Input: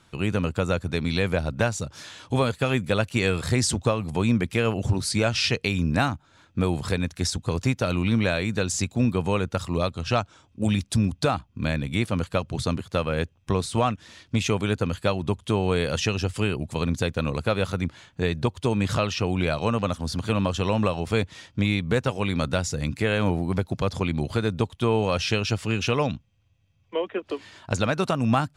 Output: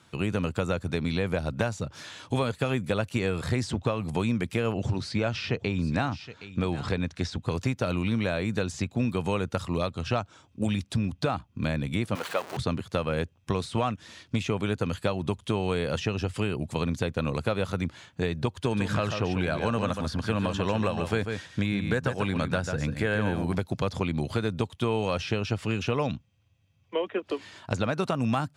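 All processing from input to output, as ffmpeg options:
-filter_complex "[0:a]asettb=1/sr,asplit=3[s0][s1][s2];[s0]atrim=end=4.724[s3];[s1]atrim=start=4.72:end=7.37,asetpts=PTS-STARTPTS,afade=t=in:d=0.004:c=qsin,afade=t=out:st=2.646:d=0.004:c=qsin,lowpass=5700,aecho=1:1:768:0.119,atrim=end_sample=116865[s4];[s2]atrim=start=7.366[s5];[s3][s4]acrossfade=d=0.004:c1=hsin:c2=qsin[s6];[s6][s5]acrossfade=d=0.004:c1=qsin:c2=hsin,asettb=1/sr,asplit=3[s7][s8][s9];[s7]atrim=end=12.154[s10];[s8]atrim=start=12.15:end=12.57,asetpts=PTS-STARTPTS,afade=t=in:d=0.004:c=qsin,afade=t=out:st=0.416:d=0.004:c=qsin,aeval=exprs='val(0)+0.5*0.0501*sgn(val(0))':c=same,highpass=540[s11];[s9]atrim=start=12.566[s12];[s10][s11]acrossfade=d=0.004:c1=hsin:c2=qsin[s13];[s13][s12]acrossfade=d=0.004:c1=qsin:c2=hsin,asettb=1/sr,asplit=3[s14][s15][s16];[s14]atrim=end=18.534[s17];[s15]atrim=start=18.53:end=23.55,asetpts=PTS-STARTPTS,afade=t=in:d=0.004:c=qsin,afade=t=out:st=5.016:d=0.004:c=qsin,equalizer=f=1600:t=o:w=0.22:g=9.5,aecho=1:1:142:0.376,atrim=end_sample=221382[s18];[s16]atrim=start=23.546[s19];[s17][s18]acrossfade=d=0.004:c1=hsin:c2=qsin[s20];[s20][s19]acrossfade=d=0.004:c1=qsin:c2=hsin,acrossover=split=1500|3800[s21][s22][s23];[s21]acompressor=threshold=0.0708:ratio=4[s24];[s22]acompressor=threshold=0.0126:ratio=4[s25];[s23]acompressor=threshold=0.00447:ratio=4[s26];[s24][s25][s26]amix=inputs=3:normalize=0,highpass=73"

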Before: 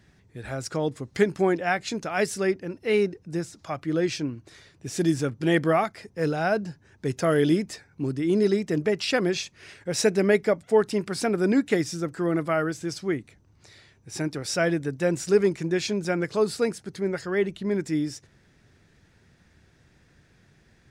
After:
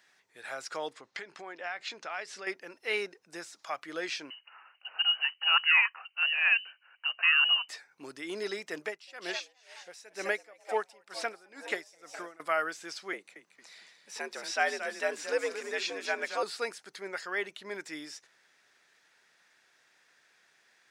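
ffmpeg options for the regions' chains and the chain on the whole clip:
-filter_complex "[0:a]asettb=1/sr,asplit=3[s0][s1][s2];[s0]atrim=end=0.934[s3];[s1]atrim=start=0.93:end=2.47,asetpts=PTS-STARTPTS,afade=t=in:d=0.004:c=qsin,afade=t=out:st=1.536:d=0.004:c=qsin,lowpass=4900,acompressor=threshold=0.0355:ratio=10:attack=3.2:release=140:knee=1:detection=peak[s4];[s2]atrim=start=2.466[s5];[s3][s4]acrossfade=d=0.004:c1=hsin:c2=qsin[s6];[s6][s5]acrossfade=d=0.004:c1=qsin:c2=hsin,asettb=1/sr,asplit=3[s7][s8][s9];[s7]atrim=end=4.304[s10];[s8]atrim=start=4.3:end=7.69,asetpts=PTS-STARTPTS,afade=t=in:d=0.004:c=qsin,afade=t=out:st=3.386:d=0.004:c=qsin,highpass=f=250:w=0.5412,highpass=f=250:w=1.3066,aemphasis=mode=production:type=bsi,lowpass=f=2700:t=q:w=0.5098,lowpass=f=2700:t=q:w=0.6013,lowpass=f=2700:t=q:w=0.9,lowpass=f=2700:t=q:w=2.563,afreqshift=-3200[s11];[s9]atrim=start=7.686[s12];[s10][s11]acrossfade=d=0.004:c1=hsin:c2=qsin[s13];[s13][s12]acrossfade=d=0.004:c1=qsin:c2=hsin,asettb=1/sr,asplit=3[s14][s15][s16];[s14]atrim=end=8.844[s17];[s15]atrim=start=8.84:end=12.4,asetpts=PTS-STARTPTS,afade=t=in:d=0.004:c=qsin,afade=t=out:st=3.556:d=0.004:c=qsin,asplit=5[s18][s19][s20][s21][s22];[s19]adelay=207,afreqshift=120,volume=0.251[s23];[s20]adelay=414,afreqshift=240,volume=0.0933[s24];[s21]adelay=621,afreqshift=360,volume=0.0343[s25];[s22]adelay=828,afreqshift=480,volume=0.0127[s26];[s18][s23][s24][s25][s26]amix=inputs=5:normalize=0,atrim=end_sample=156996,aeval=exprs='val(0)*pow(10,-25*(0.5-0.5*cos(2*PI*2.1*n/s))/20)':c=same[s27];[s16]atrim=start=12.396[s28];[s17][s27]acrossfade=d=0.004:c1=hsin:c2=qsin[s29];[s29][s28]acrossfade=d=0.004:c1=qsin:c2=hsin,asettb=1/sr,asplit=3[s30][s31][s32];[s30]atrim=end=13.134[s33];[s31]atrim=start=13.13:end=16.43,asetpts=PTS-STARTPTS,afade=t=in:d=0.004:c=qsin,afade=t=out:st=3.296:d=0.004:c=qsin,asubboost=boost=3.5:cutoff=76,afreqshift=78,asplit=6[s34][s35][s36][s37][s38][s39];[s35]adelay=226,afreqshift=-56,volume=0.335[s40];[s36]adelay=452,afreqshift=-112,volume=0.151[s41];[s37]adelay=678,afreqshift=-168,volume=0.0676[s42];[s38]adelay=904,afreqshift=-224,volume=0.0305[s43];[s39]adelay=1130,afreqshift=-280,volume=0.0138[s44];[s34][s40][s41][s42][s43][s44]amix=inputs=6:normalize=0,atrim=end_sample=145530[s45];[s32]atrim=start=16.426[s46];[s33][s45]acrossfade=d=0.004:c1=hsin:c2=qsin[s47];[s47][s46]acrossfade=d=0.004:c1=qsin:c2=hsin,acrossover=split=4800[s48][s49];[s49]acompressor=threshold=0.00398:ratio=4:attack=1:release=60[s50];[s48][s50]amix=inputs=2:normalize=0,highpass=870"

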